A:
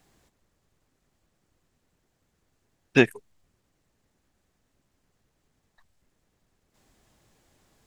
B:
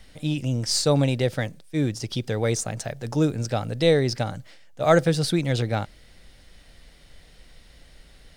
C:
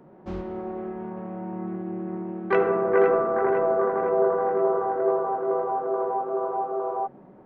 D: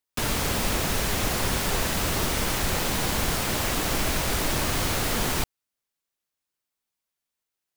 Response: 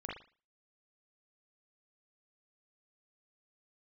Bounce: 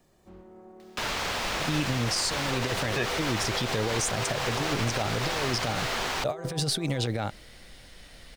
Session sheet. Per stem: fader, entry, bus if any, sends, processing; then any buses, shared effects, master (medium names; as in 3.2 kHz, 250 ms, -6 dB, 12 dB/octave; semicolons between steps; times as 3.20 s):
-4.5 dB, 0.00 s, no send, comb 1.7 ms, depth 85%
+1.0 dB, 1.45 s, no send, compressor with a negative ratio -25 dBFS, ratio -0.5; bass shelf 140 Hz -5.5 dB; short-mantissa float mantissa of 6-bit
-16.5 dB, 0.00 s, no send, none
0.0 dB, 0.80 s, no send, upward compressor, threshold -35 dBFS; three-band isolator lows -12 dB, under 510 Hz, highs -17 dB, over 6.1 kHz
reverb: none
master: peak limiter -17.5 dBFS, peak gain reduction 9 dB